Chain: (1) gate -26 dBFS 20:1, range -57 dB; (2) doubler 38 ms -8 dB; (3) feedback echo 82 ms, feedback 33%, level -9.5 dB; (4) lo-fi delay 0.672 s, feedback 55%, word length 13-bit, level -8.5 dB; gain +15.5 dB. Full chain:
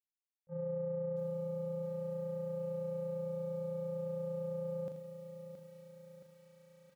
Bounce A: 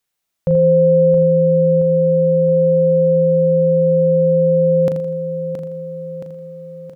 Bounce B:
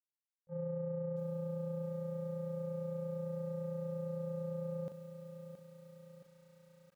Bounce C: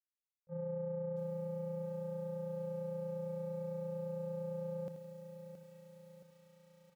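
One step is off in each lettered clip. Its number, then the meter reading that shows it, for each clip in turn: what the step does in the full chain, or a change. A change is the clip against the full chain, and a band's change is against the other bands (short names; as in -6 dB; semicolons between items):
1, momentary loudness spread change +1 LU; 3, 500 Hz band -4.5 dB; 2, 1 kHz band +2.0 dB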